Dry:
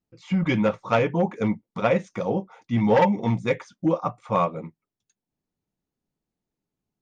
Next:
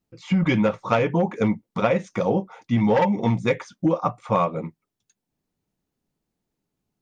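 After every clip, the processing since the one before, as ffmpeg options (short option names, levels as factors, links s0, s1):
-af "acompressor=threshold=0.0891:ratio=6,volume=1.78"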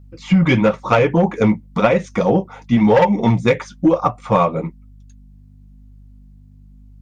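-filter_complex "[0:a]aeval=exprs='val(0)+0.00355*(sin(2*PI*50*n/s)+sin(2*PI*2*50*n/s)/2+sin(2*PI*3*50*n/s)/3+sin(2*PI*4*50*n/s)/4+sin(2*PI*5*50*n/s)/5)':c=same,flanger=delay=1.5:depth=7:regen=-46:speed=1:shape=triangular,asplit=2[s0][s1];[s1]aeval=exprs='clip(val(0),-1,0.119)':c=same,volume=0.562[s2];[s0][s2]amix=inputs=2:normalize=0,volume=2.11"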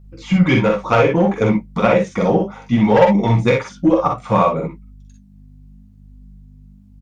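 -af "flanger=delay=5.7:depth=7.3:regen=-64:speed=0.63:shape=triangular,aecho=1:1:45|60:0.531|0.473,volume=1.41"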